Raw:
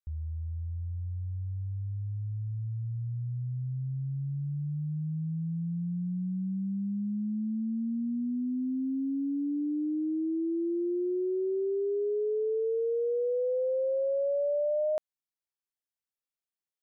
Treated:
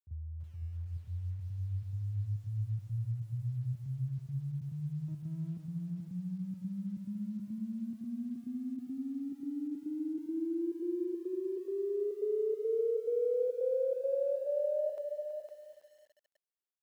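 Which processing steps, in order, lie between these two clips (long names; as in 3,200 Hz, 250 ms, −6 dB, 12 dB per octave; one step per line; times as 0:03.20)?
0:05.08–0:05.57: lower of the sound and its delayed copy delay 0.55 ms
reverb reduction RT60 0.96 s
dynamic equaliser 370 Hz, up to −4 dB, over −45 dBFS, Q 4.4
gate pattern ".xxx.xxxx.xxx" 140 BPM −12 dB
high-pass filter sweep 100 Hz → 420 Hz, 0:08.86–0:11.18
single-tap delay 508 ms −7 dB
feedback echo at a low word length 327 ms, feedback 35%, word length 9 bits, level −11 dB
level −5.5 dB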